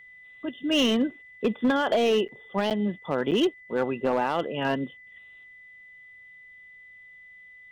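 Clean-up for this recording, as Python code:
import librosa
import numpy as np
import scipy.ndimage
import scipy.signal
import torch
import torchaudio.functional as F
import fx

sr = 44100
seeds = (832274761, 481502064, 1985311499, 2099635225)

y = fx.fix_declip(x, sr, threshold_db=-17.0)
y = fx.notch(y, sr, hz=2000.0, q=30.0)
y = fx.fix_interpolate(y, sr, at_s=(2.28, 2.7, 3.31), length_ms=8.2)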